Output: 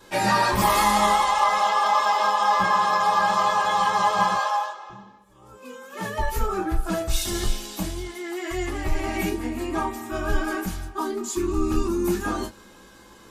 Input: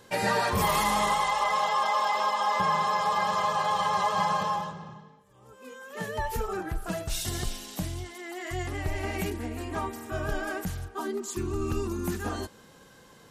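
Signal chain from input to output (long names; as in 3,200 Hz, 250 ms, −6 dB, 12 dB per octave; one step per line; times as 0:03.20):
0:04.35–0:04.90: high-pass filter 520 Hz 24 dB per octave
convolution reverb, pre-delay 3 ms, DRR −8.5 dB
level −3.5 dB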